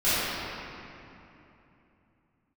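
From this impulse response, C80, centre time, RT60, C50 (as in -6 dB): -3.5 dB, 0.207 s, 3.0 s, -6.0 dB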